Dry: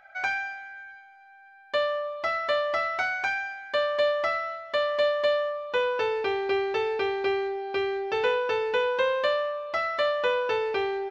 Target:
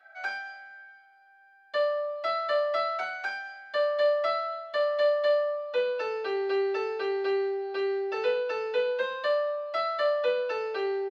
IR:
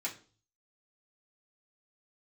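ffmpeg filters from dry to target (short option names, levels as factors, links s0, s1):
-filter_complex "[0:a]asplit=2[s0][s1];[s1]adelay=41,volume=0.335[s2];[s0][s2]amix=inputs=2:normalize=0[s3];[1:a]atrim=start_sample=2205,asetrate=83790,aresample=44100[s4];[s3][s4]afir=irnorm=-1:irlink=0"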